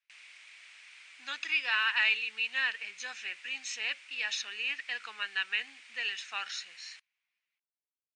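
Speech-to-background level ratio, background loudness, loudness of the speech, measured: 19.5 dB, −51.5 LKFS, −32.0 LKFS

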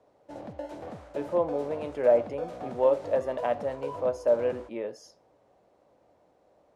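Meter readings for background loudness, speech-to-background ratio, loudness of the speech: −40.5 LKFS, 12.0 dB, −28.5 LKFS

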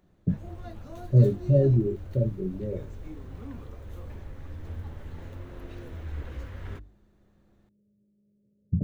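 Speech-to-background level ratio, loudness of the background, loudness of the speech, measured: 16.5 dB, −42.0 LKFS, −25.5 LKFS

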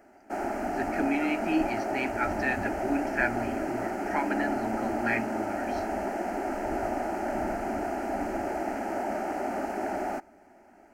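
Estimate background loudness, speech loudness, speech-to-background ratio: −31.5 LKFS, −32.0 LKFS, −0.5 dB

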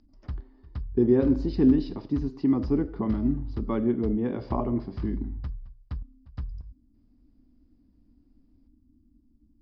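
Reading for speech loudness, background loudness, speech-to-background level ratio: −26.5 LKFS, −39.0 LKFS, 12.5 dB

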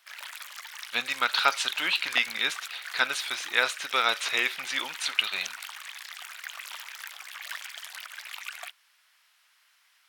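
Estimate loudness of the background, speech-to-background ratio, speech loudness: −39.0 LKFS, 12.0 dB, −27.0 LKFS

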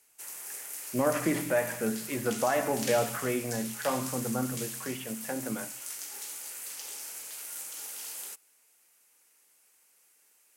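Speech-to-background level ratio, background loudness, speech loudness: 6.0 dB, −37.5 LKFS, −31.5 LKFS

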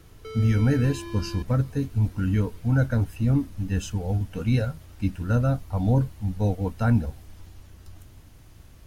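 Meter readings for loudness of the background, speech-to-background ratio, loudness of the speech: −39.5 LKFS, 14.0 dB, −25.5 LKFS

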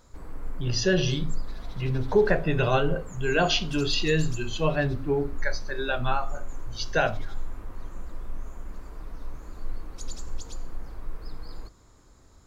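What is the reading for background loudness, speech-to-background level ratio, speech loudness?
−42.0 LKFS, 15.5 dB, −26.5 LKFS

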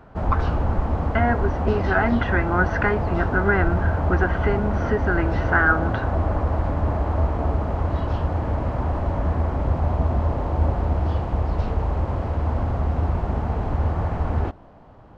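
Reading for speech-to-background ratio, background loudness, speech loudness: 0.5 dB, −24.5 LKFS, −24.0 LKFS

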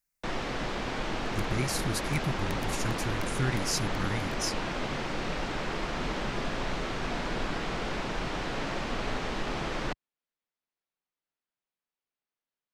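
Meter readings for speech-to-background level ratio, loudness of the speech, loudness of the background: 0.0 dB, −33.5 LKFS, −33.5 LKFS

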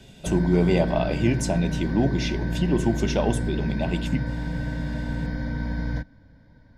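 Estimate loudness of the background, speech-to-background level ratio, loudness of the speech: −29.5 LKFS, 4.5 dB, −25.0 LKFS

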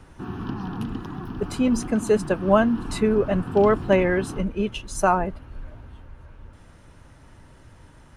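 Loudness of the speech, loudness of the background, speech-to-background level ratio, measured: −22.5 LKFS, −33.5 LKFS, 11.0 dB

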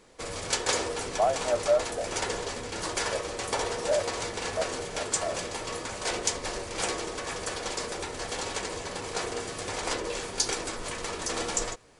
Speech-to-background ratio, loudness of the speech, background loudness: 0.0 dB, −31.5 LKFS, −31.5 LKFS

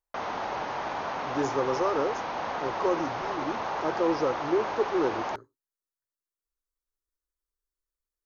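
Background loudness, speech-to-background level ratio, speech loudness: −32.5 LKFS, 2.5 dB, −30.0 LKFS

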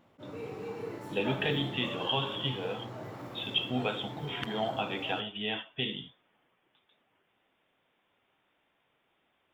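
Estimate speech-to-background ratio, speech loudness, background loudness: 8.0 dB, −33.5 LKFS, −41.5 LKFS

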